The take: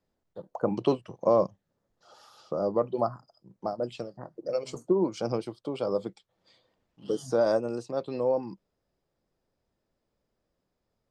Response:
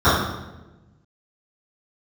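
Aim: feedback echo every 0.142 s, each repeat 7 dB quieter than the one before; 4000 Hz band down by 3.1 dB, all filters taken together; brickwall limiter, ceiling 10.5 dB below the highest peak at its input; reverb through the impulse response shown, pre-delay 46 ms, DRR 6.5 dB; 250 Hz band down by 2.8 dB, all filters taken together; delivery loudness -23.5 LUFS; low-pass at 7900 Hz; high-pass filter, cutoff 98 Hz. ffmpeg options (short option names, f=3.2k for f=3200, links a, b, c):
-filter_complex "[0:a]highpass=98,lowpass=7.9k,equalizer=f=250:t=o:g=-4,equalizer=f=4k:t=o:g=-4,alimiter=limit=-22.5dB:level=0:latency=1,aecho=1:1:142|284|426|568|710:0.447|0.201|0.0905|0.0407|0.0183,asplit=2[a][b];[1:a]atrim=start_sample=2205,adelay=46[c];[b][c]afir=irnorm=-1:irlink=0,volume=-32.5dB[d];[a][d]amix=inputs=2:normalize=0,volume=9.5dB"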